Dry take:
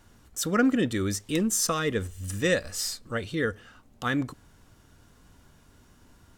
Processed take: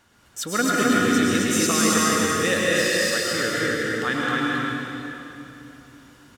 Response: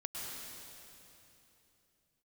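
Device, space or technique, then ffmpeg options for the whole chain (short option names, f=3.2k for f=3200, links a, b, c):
stadium PA: -filter_complex "[0:a]asettb=1/sr,asplit=3[a][b][c];[a]atrim=end=2.044[d];[b]atrim=start=2.04:end=3.32,asetpts=PTS-STARTPTS,afade=t=in:d=0.004:c=qsin,afade=t=out:st=1.276:d=0.004:c=qsin,highpass=170[e];[c]atrim=start=3.316[f];[d][e]acrossfade=d=0.004:c1=hsin:c2=qsin[g];[g][f]acrossfade=d=0.004:c1=qsin:c2=hsin,highpass=f=150:p=1,equalizer=f=2.2k:t=o:w=2.8:g=6,aecho=1:1:183.7|224.5|265.3:0.282|0.282|0.794[h];[1:a]atrim=start_sample=2205[i];[h][i]afir=irnorm=-1:irlink=0,volume=1.5dB"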